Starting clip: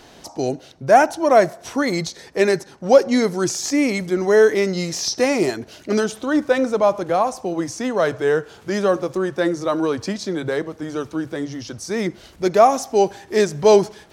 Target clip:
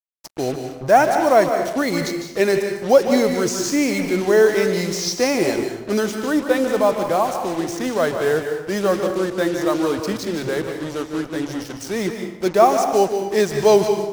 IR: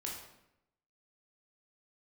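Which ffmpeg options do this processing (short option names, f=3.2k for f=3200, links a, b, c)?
-filter_complex "[0:a]acrusher=bits=4:mix=0:aa=0.5,asplit=2[a][b];[1:a]atrim=start_sample=2205,adelay=150[c];[b][c]afir=irnorm=-1:irlink=0,volume=-5dB[d];[a][d]amix=inputs=2:normalize=0,volume=-1dB"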